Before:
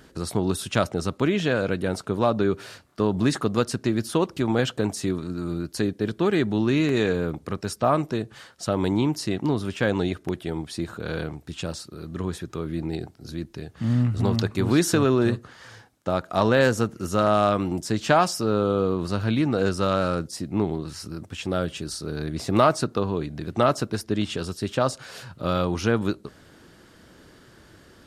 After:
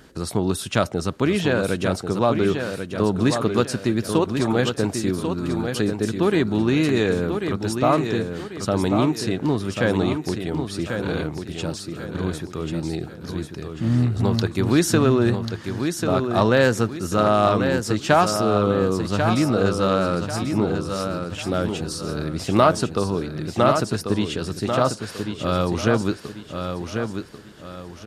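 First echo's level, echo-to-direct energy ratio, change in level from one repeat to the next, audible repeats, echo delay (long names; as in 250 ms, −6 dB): −6.5 dB, −6.0 dB, −9.0 dB, 4, 1,091 ms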